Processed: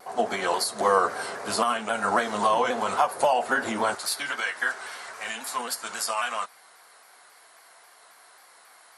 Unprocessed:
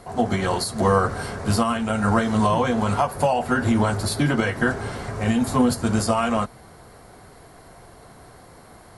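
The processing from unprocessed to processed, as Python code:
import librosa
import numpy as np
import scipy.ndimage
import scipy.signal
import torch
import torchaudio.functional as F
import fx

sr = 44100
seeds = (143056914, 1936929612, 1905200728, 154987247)

y = fx.highpass(x, sr, hz=fx.steps((0.0, 480.0), (3.95, 1200.0)), slope=12)
y = fx.vibrato_shape(y, sr, shape='saw_down', rate_hz=3.7, depth_cents=100.0)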